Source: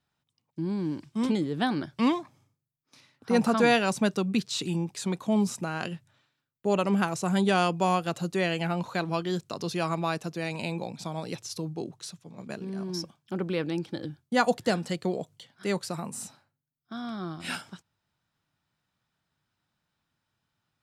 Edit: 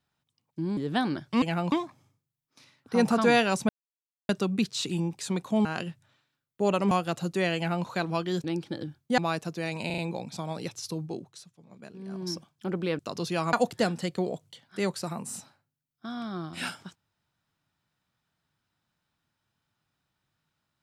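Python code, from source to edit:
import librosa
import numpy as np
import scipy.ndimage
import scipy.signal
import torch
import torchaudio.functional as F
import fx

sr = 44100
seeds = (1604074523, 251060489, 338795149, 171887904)

y = fx.edit(x, sr, fx.cut(start_s=0.77, length_s=0.66),
    fx.insert_silence(at_s=4.05, length_s=0.6),
    fx.cut(start_s=5.41, length_s=0.29),
    fx.cut(start_s=6.96, length_s=0.94),
    fx.duplicate(start_s=8.55, length_s=0.3, to_s=2.08),
    fx.swap(start_s=9.43, length_s=0.54, other_s=13.66, other_length_s=0.74),
    fx.stutter(start_s=10.65, slice_s=0.04, count=4),
    fx.fade_down_up(start_s=11.73, length_s=1.24, db=-9.0, fade_s=0.36), tone=tone)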